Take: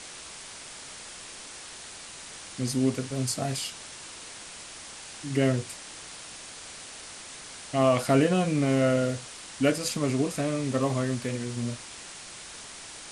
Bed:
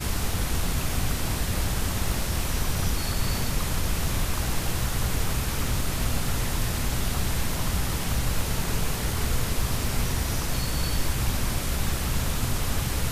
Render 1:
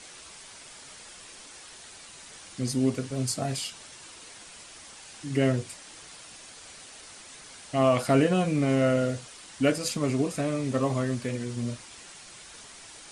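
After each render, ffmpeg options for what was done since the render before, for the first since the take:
-af "afftdn=nr=6:nf=-44"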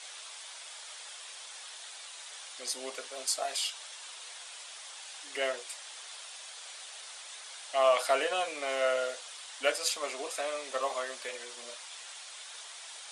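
-af "highpass=f=580:w=0.5412,highpass=f=580:w=1.3066,equalizer=f=3.5k:w=3.4:g=5.5"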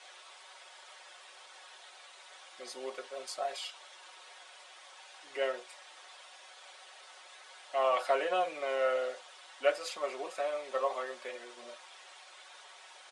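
-af "lowpass=f=1.3k:p=1,aecho=1:1:5.4:0.57"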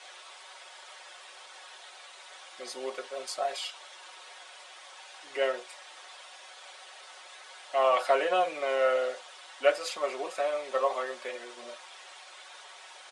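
-af "volume=4.5dB"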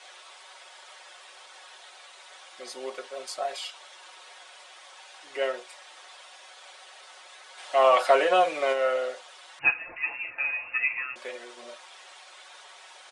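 -filter_complex "[0:a]asplit=3[a][b][c];[a]afade=t=out:st=7.57:d=0.02[d];[b]acontrast=29,afade=t=in:st=7.57:d=0.02,afade=t=out:st=8.72:d=0.02[e];[c]afade=t=in:st=8.72:d=0.02[f];[d][e][f]amix=inputs=3:normalize=0,asettb=1/sr,asplit=3[g][h][i];[g]atrim=end=9.594[j];[h]atrim=start=9.59:end=11.16,asetpts=PTS-STARTPTS,afade=t=in:d=0.004:c=qsin,afade=t=out:st=1.566:d=0.004:c=qsin,lowpass=f=2.6k:t=q:w=0.5098,lowpass=f=2.6k:t=q:w=0.6013,lowpass=f=2.6k:t=q:w=0.9,lowpass=f=2.6k:t=q:w=2.563,afreqshift=-3100[k];[i]atrim=start=11.156[l];[j][k]acrossfade=d=0.004:c1=hsin:c2=qsin[m];[m][l]acrossfade=d=0.004:c1=qsin:c2=hsin"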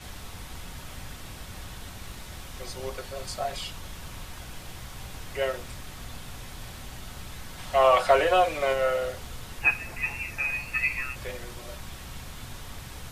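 -filter_complex "[1:a]volume=-15dB[a];[0:a][a]amix=inputs=2:normalize=0"

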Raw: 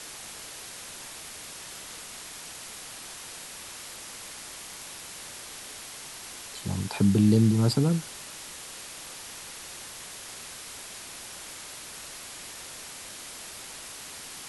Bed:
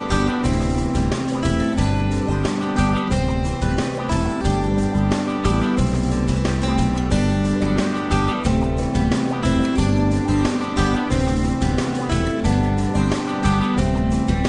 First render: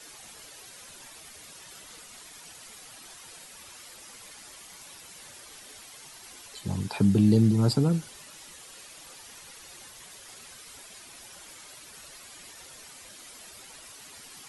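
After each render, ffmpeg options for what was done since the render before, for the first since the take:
-af "afftdn=nr=10:nf=-43"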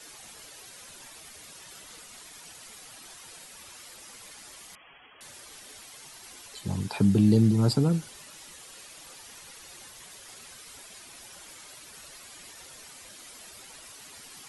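-filter_complex "[0:a]asettb=1/sr,asplit=3[a][b][c];[a]atrim=end=4.754[d];[b]atrim=start=4.75:end=5.21,asetpts=PTS-STARTPTS,afade=t=in:d=0.004:c=qsin,afade=t=out:st=0.456:d=0.004:c=qsin,lowpass=f=2.9k:t=q:w=0.5098,lowpass=f=2.9k:t=q:w=0.6013,lowpass=f=2.9k:t=q:w=0.9,lowpass=f=2.9k:t=q:w=2.563,afreqshift=-3400[e];[c]atrim=start=5.206[f];[d][e]acrossfade=d=0.004:c1=hsin:c2=qsin[g];[g][f]acrossfade=d=0.004:c1=qsin:c2=hsin"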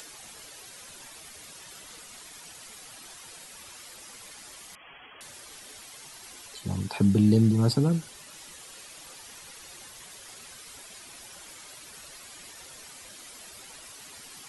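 -af "acompressor=mode=upward:threshold=-42dB:ratio=2.5"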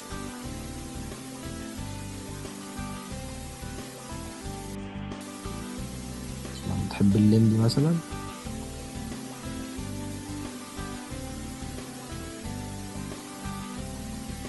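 -filter_complex "[1:a]volume=-18dB[a];[0:a][a]amix=inputs=2:normalize=0"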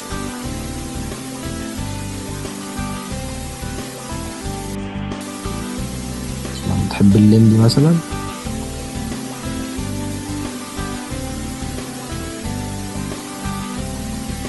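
-af "volume=11dB,alimiter=limit=-2dB:level=0:latency=1"

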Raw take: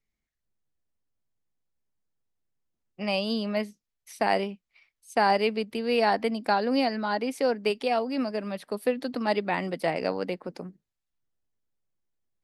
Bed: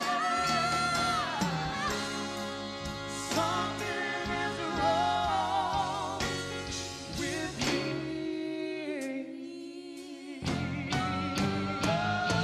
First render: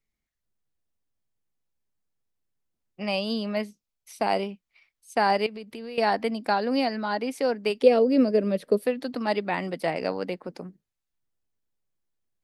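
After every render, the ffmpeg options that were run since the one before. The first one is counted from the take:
-filter_complex "[0:a]asettb=1/sr,asplit=3[a][b][c];[a]atrim=end=3.664[d];[b]atrim=start=3.66:end=4.45,asetpts=PTS-STARTPTS,afade=t=in:d=0.004:c=qsin,afade=t=out:st=0.786:d=0.004:c=qsin,equalizer=f=1.8k:w=6.2:g=-9.5[e];[c]atrim=start=4.446[f];[d][e]acrossfade=d=0.004:c1=hsin:c2=qsin[g];[g][f]acrossfade=d=0.004:c1=qsin:c2=hsin,asettb=1/sr,asplit=3[h][i][j];[h]atrim=end=5.464[k];[i]atrim=start=5.46:end=5.98,asetpts=PTS-STARTPTS,afade=t=in:d=0.004:c=qsin,afade=t=out:st=0.516:d=0.004:c=qsin,acompressor=threshold=-34dB:ratio=8:attack=3.2:release=140:knee=1:detection=peak[l];[j]atrim=start=5.976[m];[k][l]acrossfade=d=0.004:c1=hsin:c2=qsin[n];[n][m]acrossfade=d=0.004:c1=qsin:c2=hsin,asettb=1/sr,asplit=3[o][p][q];[o]atrim=end=7.824[r];[p]atrim=start=7.82:end=8.84,asetpts=PTS-STARTPTS,afade=t=in:d=0.004:c=qsin,afade=t=out:st=1.016:d=0.004:c=qsin,lowshelf=f=640:t=q:w=3:g=7[s];[q]atrim=start=8.836[t];[r][s]acrossfade=d=0.004:c1=hsin:c2=qsin[u];[u][t]acrossfade=d=0.004:c1=qsin:c2=hsin"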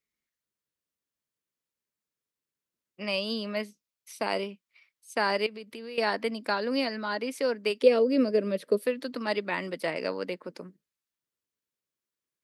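-af "highpass=f=330:p=1,equalizer=f=760:t=o:w=0.23:g=-14.5"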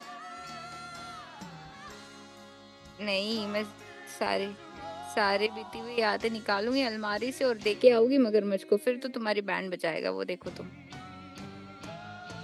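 -filter_complex "[1:a]volume=-14dB[a];[0:a][a]amix=inputs=2:normalize=0"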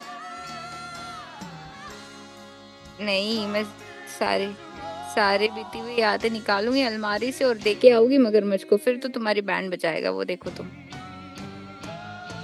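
-af "volume=6dB"

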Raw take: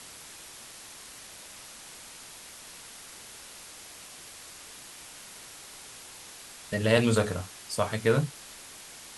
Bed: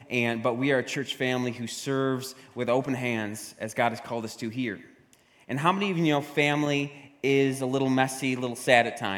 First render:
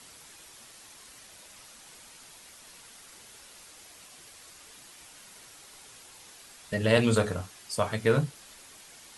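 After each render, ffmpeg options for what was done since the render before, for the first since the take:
-af "afftdn=nr=6:nf=-47"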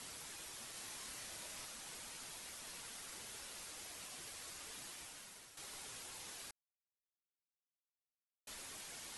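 -filter_complex "[0:a]asettb=1/sr,asplit=3[a][b][c];[a]atrim=end=0.724[d];[b]atrim=start=0.72:end=1.65,asetpts=PTS-STARTPTS,afade=t=in:d=0.004:c=qsin,afade=t=out:st=0.926:d=0.004:c=qsin,asplit=2[e][f];[f]adelay=29,volume=-4.5dB[g];[e][g]amix=inputs=2:normalize=0,atrim=end_sample=41013[h];[c]atrim=start=1.646[i];[d][h]acrossfade=d=0.004:c1=hsin:c2=qsin[j];[j][i]acrossfade=d=0.004:c1=qsin:c2=hsin,asplit=4[k][l][m][n];[k]atrim=end=5.57,asetpts=PTS-STARTPTS,afade=t=out:st=4.88:d=0.69:silence=0.298538[o];[l]atrim=start=5.57:end=6.51,asetpts=PTS-STARTPTS,afade=t=in:d=0.004:c=hsin:silence=0.298538,afade=t=out:st=0.936:d=0.004:c=hsin[p];[m]atrim=start=6.51:end=8.47,asetpts=PTS-STARTPTS,volume=0[q];[n]atrim=start=8.47,asetpts=PTS-STARTPTS,afade=t=in:d=0.004:c=hsin[r];[o][p][q][r]concat=n=4:v=0:a=1"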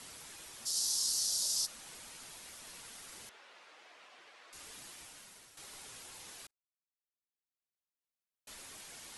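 -filter_complex "[0:a]asplit=3[a][b][c];[a]afade=t=out:st=0.65:d=0.02[d];[b]highshelf=f=3.4k:t=q:w=3:g=14,afade=t=in:st=0.65:d=0.02,afade=t=out:st=1.65:d=0.02[e];[c]afade=t=in:st=1.65:d=0.02[f];[d][e][f]amix=inputs=3:normalize=0,asettb=1/sr,asplit=3[g][h][i];[g]atrim=end=3.294[j];[h]atrim=start=3.29:end=4.53,asetpts=PTS-STARTPTS,afade=t=in:d=0.004:c=qsin,afade=t=out:st=1.236:d=0.004:c=qsin,highpass=480,lowpass=2.6k[k];[i]atrim=start=4.526[l];[j][k]acrossfade=d=0.004:c1=hsin:c2=qsin[m];[m][l]acrossfade=d=0.004:c1=qsin:c2=hsin,asplit=2[n][o];[n]atrim=end=6.47,asetpts=PTS-STARTPTS,afade=t=out:st=6.466:d=0.004:c=hsin[p];[o]atrim=start=6.47,asetpts=PTS-STARTPTS,afade=t=in:d=2.01[q];[p][q]concat=n=2:v=0:a=1"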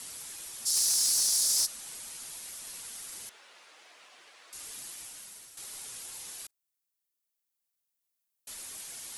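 -af "crystalizer=i=2:c=0,asoftclip=type=hard:threshold=-21.5dB"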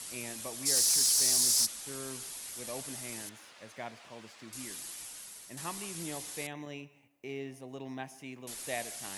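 -filter_complex "[1:a]volume=-17.5dB[a];[0:a][a]amix=inputs=2:normalize=0"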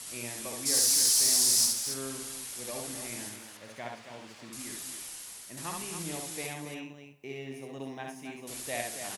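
-filter_complex "[0:a]asplit=2[a][b];[b]adelay=49,volume=-13dB[c];[a][c]amix=inputs=2:normalize=0,aecho=1:1:67.06|277:0.708|0.398"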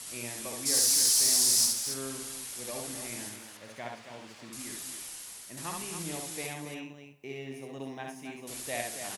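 -af anull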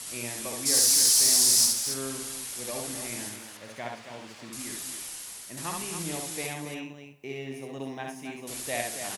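-af "volume=3.5dB"

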